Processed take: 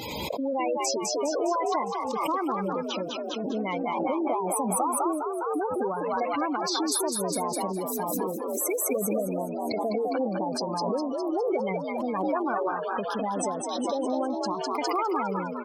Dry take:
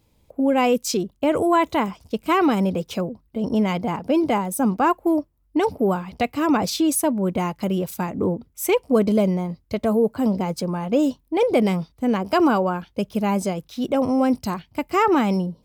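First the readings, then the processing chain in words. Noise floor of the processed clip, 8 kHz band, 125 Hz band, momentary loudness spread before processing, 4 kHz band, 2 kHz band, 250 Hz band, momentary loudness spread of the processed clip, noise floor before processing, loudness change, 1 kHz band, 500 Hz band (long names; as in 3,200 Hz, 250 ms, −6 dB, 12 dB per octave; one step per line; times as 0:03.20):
−33 dBFS, +0.5 dB, −12.5 dB, 8 LU, −2.5 dB, −7.5 dB, −10.0 dB, 4 LU, −63 dBFS, −6.5 dB, −4.0 dB, −5.5 dB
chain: one scale factor per block 5 bits
high-pass filter 870 Hz 6 dB per octave
gate on every frequency bin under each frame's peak −10 dB strong
downward compressor 4 to 1, threshold −28 dBFS, peak gain reduction 8.5 dB
on a send: echo with shifted repeats 204 ms, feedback 52%, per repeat +59 Hz, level −4 dB
on the sum: background raised ahead of every attack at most 21 dB per second
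level +1.5 dB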